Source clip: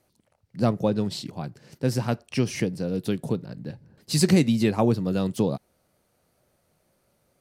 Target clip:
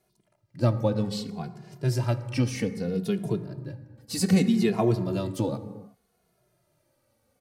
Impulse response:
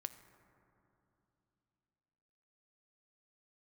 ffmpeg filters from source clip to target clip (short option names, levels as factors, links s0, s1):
-filter_complex "[0:a]asettb=1/sr,asplit=3[s0][s1][s2];[s0]atrim=end=3.434[s3];[s1]atrim=start=3.43:end=4.33,asetpts=PTS-STARTPTS,afade=t=in:d=0.004:c=qsin,afade=t=out:st=0.896:d=0.004:c=qsin,equalizer=f=3300:w=0.74:g=-4.5[s4];[s2]atrim=start=4.326[s5];[s3][s4]acrossfade=d=0.004:c1=hsin:c2=qsin[s6];[s6][s5]acrossfade=d=0.004:c1=qsin:c2=hsin[s7];[1:a]atrim=start_sample=2205,afade=t=out:st=0.43:d=0.01,atrim=end_sample=19404[s8];[s7][s8]afir=irnorm=-1:irlink=0,asplit=2[s9][s10];[s10]adelay=2.4,afreqshift=-0.64[s11];[s9][s11]amix=inputs=2:normalize=1,volume=1.58"